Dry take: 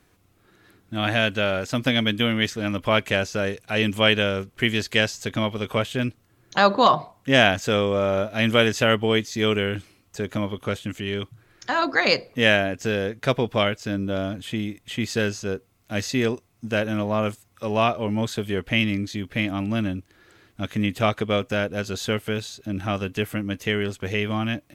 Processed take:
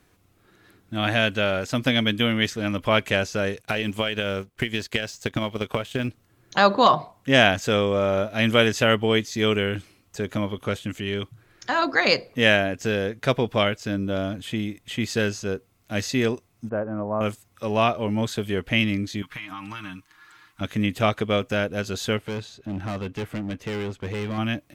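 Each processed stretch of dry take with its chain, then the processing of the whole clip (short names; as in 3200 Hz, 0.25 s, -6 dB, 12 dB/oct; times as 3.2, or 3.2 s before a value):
3.61–6.08 G.711 law mismatch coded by A + transient shaper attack +11 dB, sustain -3 dB + compressor 8:1, threshold -20 dBFS
16.69–17.21 LPF 1200 Hz 24 dB/oct + low shelf 390 Hz -6 dB
19.22–20.61 resonant low shelf 760 Hz -10 dB, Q 3 + comb 6.5 ms, depth 73% + compressor 8:1, threshold -31 dBFS
22.17–24.38 LPF 2300 Hz 6 dB/oct + de-esser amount 95% + hard clip -26 dBFS
whole clip: dry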